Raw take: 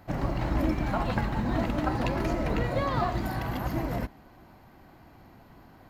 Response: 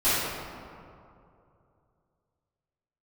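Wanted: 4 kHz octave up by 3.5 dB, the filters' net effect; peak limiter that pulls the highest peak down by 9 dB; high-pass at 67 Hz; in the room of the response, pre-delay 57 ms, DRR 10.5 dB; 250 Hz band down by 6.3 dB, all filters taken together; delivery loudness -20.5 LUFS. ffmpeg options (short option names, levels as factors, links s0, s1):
-filter_complex "[0:a]highpass=67,equalizer=f=250:t=o:g=-8.5,equalizer=f=4000:t=o:g=4.5,alimiter=level_in=1.06:limit=0.0631:level=0:latency=1,volume=0.944,asplit=2[s0][s1];[1:a]atrim=start_sample=2205,adelay=57[s2];[s1][s2]afir=irnorm=-1:irlink=0,volume=0.0473[s3];[s0][s3]amix=inputs=2:normalize=0,volume=4.47"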